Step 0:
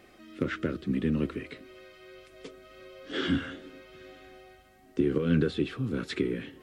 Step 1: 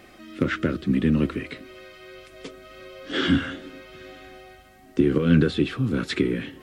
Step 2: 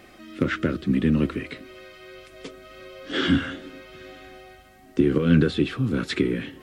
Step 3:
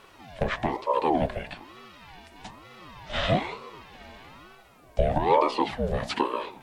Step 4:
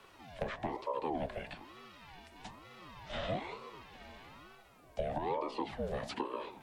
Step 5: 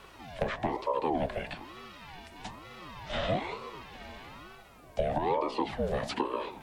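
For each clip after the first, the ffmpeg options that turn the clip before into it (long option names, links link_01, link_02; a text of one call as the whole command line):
ffmpeg -i in.wav -af "equalizer=frequency=430:width=3:gain=-4,volume=7.5dB" out.wav
ffmpeg -i in.wav -af anull out.wav
ffmpeg -i in.wav -af "bandreject=frequency=61.47:width_type=h:width=4,bandreject=frequency=122.94:width_type=h:width=4,bandreject=frequency=184.41:width_type=h:width=4,bandreject=frequency=245.88:width_type=h:width=4,bandreject=frequency=307.35:width_type=h:width=4,bandreject=frequency=368.82:width_type=h:width=4,bandreject=frequency=430.29:width_type=h:width=4,bandreject=frequency=491.76:width_type=h:width=4,bandreject=frequency=553.23:width_type=h:width=4,bandreject=frequency=614.7:width_type=h:width=4,bandreject=frequency=676.17:width_type=h:width=4,bandreject=frequency=737.64:width_type=h:width=4,bandreject=frequency=799.11:width_type=h:width=4,bandreject=frequency=860.58:width_type=h:width=4,bandreject=frequency=922.05:width_type=h:width=4,bandreject=frequency=983.52:width_type=h:width=4,bandreject=frequency=1044.99:width_type=h:width=4,bandreject=frequency=1106.46:width_type=h:width=4,bandreject=frequency=1167.93:width_type=h:width=4,bandreject=frequency=1229.4:width_type=h:width=4,bandreject=frequency=1290.87:width_type=h:width=4,bandreject=frequency=1352.34:width_type=h:width=4,bandreject=frequency=1413.81:width_type=h:width=4,bandreject=frequency=1475.28:width_type=h:width=4,bandreject=frequency=1536.75:width_type=h:width=4,aeval=exprs='val(0)*sin(2*PI*530*n/s+530*0.45/1.1*sin(2*PI*1.1*n/s))':channel_layout=same" out.wav
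ffmpeg -i in.wav -filter_complex "[0:a]acrossover=split=110|250|790[link_01][link_02][link_03][link_04];[link_01]acompressor=threshold=-40dB:ratio=4[link_05];[link_02]acompressor=threshold=-41dB:ratio=4[link_06];[link_03]acompressor=threshold=-31dB:ratio=4[link_07];[link_04]acompressor=threshold=-37dB:ratio=4[link_08];[link_05][link_06][link_07][link_08]amix=inputs=4:normalize=0,volume=-6dB" out.wav
ffmpeg -i in.wav -af "aeval=exprs='val(0)+0.000398*(sin(2*PI*50*n/s)+sin(2*PI*2*50*n/s)/2+sin(2*PI*3*50*n/s)/3+sin(2*PI*4*50*n/s)/4+sin(2*PI*5*50*n/s)/5)':channel_layout=same,volume=6.5dB" out.wav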